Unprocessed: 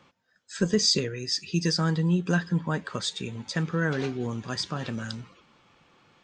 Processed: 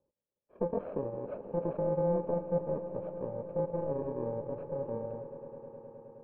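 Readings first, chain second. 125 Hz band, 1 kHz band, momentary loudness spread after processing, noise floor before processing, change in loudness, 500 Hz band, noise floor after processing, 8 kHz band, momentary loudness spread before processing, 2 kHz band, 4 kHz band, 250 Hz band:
-12.0 dB, -4.0 dB, 15 LU, -68 dBFS, -7.5 dB, +1.0 dB, under -85 dBFS, under -40 dB, 11 LU, under -25 dB, under -40 dB, -11.0 dB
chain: FFT order left unsorted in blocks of 64 samples; bell 160 Hz -11.5 dB 2.4 oct; sample leveller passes 2; in parallel at -9.5 dB: wrapped overs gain 15 dB; on the sum: ladder low-pass 650 Hz, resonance 75%; on a send: swelling echo 0.105 s, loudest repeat 5, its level -17.5 dB; on the sum: gain +3 dB

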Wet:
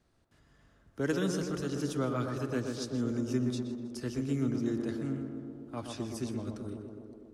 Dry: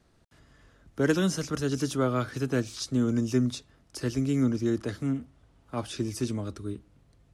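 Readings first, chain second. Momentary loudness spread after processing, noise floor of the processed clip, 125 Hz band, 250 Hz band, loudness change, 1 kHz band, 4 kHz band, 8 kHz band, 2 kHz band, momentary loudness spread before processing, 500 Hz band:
11 LU, -67 dBFS, -5.5 dB, -4.5 dB, -5.5 dB, -5.0 dB, -6.5 dB, -7.0 dB, -6.0 dB, 12 LU, -4.5 dB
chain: tape echo 0.124 s, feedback 86%, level -3.5 dB, low-pass 1400 Hz; warbling echo 0.16 s, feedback 48%, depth 53 cents, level -17.5 dB; gain -7 dB

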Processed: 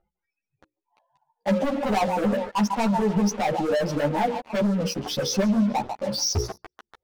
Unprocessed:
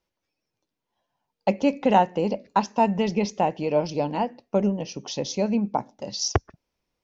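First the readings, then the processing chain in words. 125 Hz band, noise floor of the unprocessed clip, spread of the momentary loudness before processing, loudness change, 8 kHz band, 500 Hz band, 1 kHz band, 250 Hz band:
+2.0 dB, -84 dBFS, 9 LU, +0.5 dB, n/a, -0.5 dB, -2.0 dB, +2.0 dB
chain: spectral contrast raised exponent 1.8; spectral noise reduction 29 dB; narrowing echo 0.145 s, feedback 62%, band-pass 1800 Hz, level -12 dB; upward compressor, threshold -33 dBFS; low-pass opened by the level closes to 1400 Hz, open at -22 dBFS; dynamic EQ 590 Hz, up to +4 dB, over -32 dBFS, Q 3.5; notches 60/120/180/240/300/360/420/480/540 Hz; sample leveller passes 5; limiter -14.5 dBFS, peak gain reduction 7.5 dB; ensemble effect; gain -2.5 dB

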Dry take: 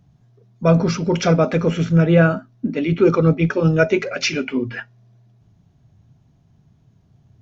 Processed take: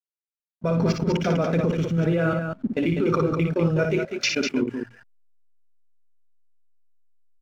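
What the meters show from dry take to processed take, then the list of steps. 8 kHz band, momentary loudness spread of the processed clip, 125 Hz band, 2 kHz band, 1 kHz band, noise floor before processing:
n/a, 6 LU, -6.5 dB, -6.0 dB, -5.0 dB, -57 dBFS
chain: level quantiser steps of 22 dB; backlash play -46 dBFS; loudspeakers at several distances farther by 20 m -5 dB, 68 m -6 dB

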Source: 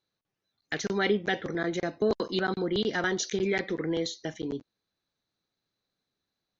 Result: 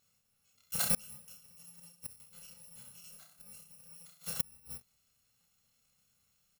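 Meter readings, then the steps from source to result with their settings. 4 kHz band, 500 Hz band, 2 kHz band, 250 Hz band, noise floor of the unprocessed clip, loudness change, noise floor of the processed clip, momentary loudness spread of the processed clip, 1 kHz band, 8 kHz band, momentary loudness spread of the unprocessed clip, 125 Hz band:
-11.5 dB, -28.0 dB, -19.5 dB, -22.5 dB, under -85 dBFS, -6.0 dB, -76 dBFS, 21 LU, -18.0 dB, n/a, 9 LU, -13.5 dB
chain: FFT order left unsorted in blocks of 128 samples; auto swell 0.145 s; on a send: reverse bouncing-ball echo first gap 30 ms, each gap 1.15×, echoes 5; on the sum: flipped gate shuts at -25 dBFS, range -35 dB; gain +8 dB

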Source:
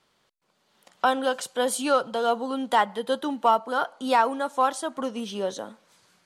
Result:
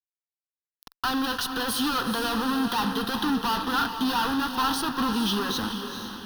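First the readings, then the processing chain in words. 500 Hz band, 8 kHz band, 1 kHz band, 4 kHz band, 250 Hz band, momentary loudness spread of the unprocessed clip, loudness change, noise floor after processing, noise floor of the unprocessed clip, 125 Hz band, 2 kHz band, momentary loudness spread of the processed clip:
-9.5 dB, 0.0 dB, -3.5 dB, +7.0 dB, +5.0 dB, 8 LU, -1.0 dB, under -85 dBFS, -69 dBFS, n/a, +1.5 dB, 3 LU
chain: fuzz box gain 44 dB, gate -43 dBFS; fixed phaser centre 2200 Hz, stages 6; diffused feedback echo 0.451 s, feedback 47%, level -7.5 dB; gain -7.5 dB

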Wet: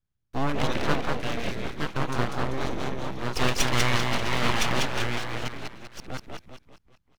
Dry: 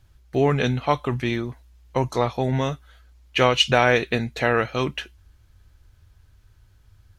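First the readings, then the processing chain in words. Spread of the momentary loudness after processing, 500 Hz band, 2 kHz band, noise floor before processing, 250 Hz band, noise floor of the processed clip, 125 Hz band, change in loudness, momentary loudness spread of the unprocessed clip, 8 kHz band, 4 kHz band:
15 LU, -8.5 dB, -3.5 dB, -56 dBFS, -4.0 dB, -76 dBFS, -4.5 dB, -5.5 dB, 12 LU, +5.0 dB, -4.0 dB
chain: reverse delay 0.686 s, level -3 dB; gate with hold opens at -41 dBFS; frequency-shifting echo 0.195 s, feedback 45%, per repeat -34 Hz, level -3.5 dB; full-wave rectifier; gain -4.5 dB

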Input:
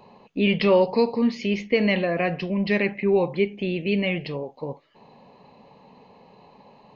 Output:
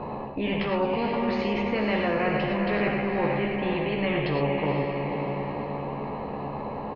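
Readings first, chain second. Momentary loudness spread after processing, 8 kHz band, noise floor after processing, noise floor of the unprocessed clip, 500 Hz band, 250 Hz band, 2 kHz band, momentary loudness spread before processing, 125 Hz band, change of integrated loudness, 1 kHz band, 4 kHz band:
8 LU, n/a, -34 dBFS, -54 dBFS, -3.5 dB, -3.0 dB, -1.5 dB, 14 LU, +0.5 dB, -4.0 dB, +4.0 dB, -3.5 dB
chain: LPF 1000 Hz 12 dB/oct; reverse; compressor, threshold -30 dBFS, peak gain reduction 15 dB; reverse; doubler 14 ms -5.5 dB; on a send: diffused feedback echo 0.497 s, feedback 45%, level -8 dB; on the sum: non-linear reverb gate 0.13 s rising, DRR 3.5 dB; spectral compressor 2:1; gain +5 dB

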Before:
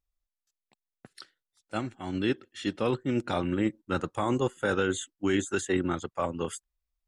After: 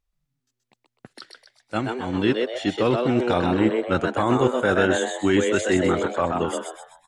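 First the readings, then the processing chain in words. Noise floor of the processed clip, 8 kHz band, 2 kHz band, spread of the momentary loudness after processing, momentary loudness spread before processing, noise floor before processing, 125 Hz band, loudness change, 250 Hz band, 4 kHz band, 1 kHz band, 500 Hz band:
-80 dBFS, +4.5 dB, +8.5 dB, 7 LU, 8 LU, under -85 dBFS, +6.5 dB, +8.0 dB, +7.0 dB, +7.5 dB, +9.0 dB, +9.0 dB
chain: high shelf 7700 Hz -8.5 dB; frequency-shifting echo 0.127 s, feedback 41%, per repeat +120 Hz, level -4 dB; gain +6.5 dB

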